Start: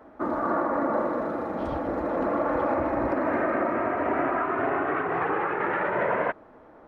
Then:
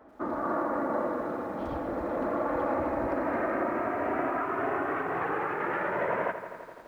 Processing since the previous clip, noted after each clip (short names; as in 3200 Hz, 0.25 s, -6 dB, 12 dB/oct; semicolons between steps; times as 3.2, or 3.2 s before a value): lo-fi delay 84 ms, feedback 80%, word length 9-bit, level -12.5 dB; gain -4.5 dB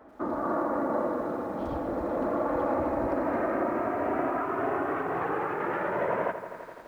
dynamic EQ 2000 Hz, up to -5 dB, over -46 dBFS, Q 0.99; gain +2 dB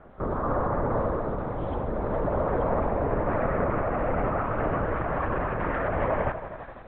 LPC vocoder at 8 kHz whisper; gain +2.5 dB